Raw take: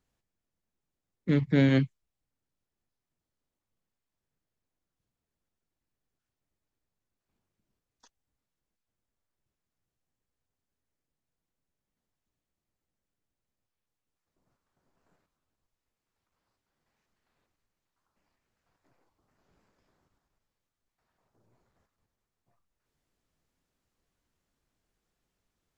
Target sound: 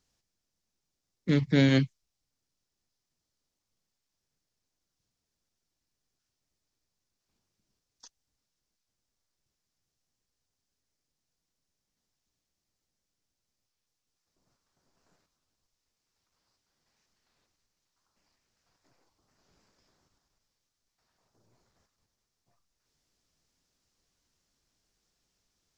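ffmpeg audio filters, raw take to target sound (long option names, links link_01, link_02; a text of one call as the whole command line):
ffmpeg -i in.wav -af "equalizer=frequency=5400:width=1.1:gain=12.5" out.wav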